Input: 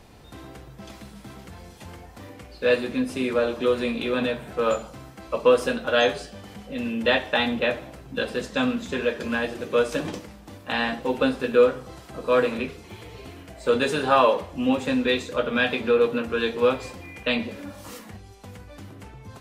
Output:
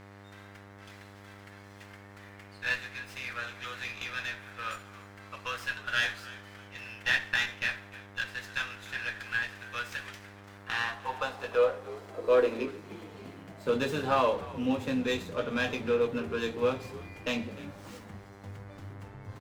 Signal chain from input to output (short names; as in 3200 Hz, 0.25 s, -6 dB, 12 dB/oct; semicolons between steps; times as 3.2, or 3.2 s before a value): high-pass sweep 1700 Hz -> 99 Hz, 10.35–14.18; buzz 100 Hz, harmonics 22, -43 dBFS -4 dB/oct; on a send: frequency-shifting echo 0.302 s, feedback 34%, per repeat -79 Hz, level -18.5 dB; on the sum: running maximum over 3 samples; gain -8 dB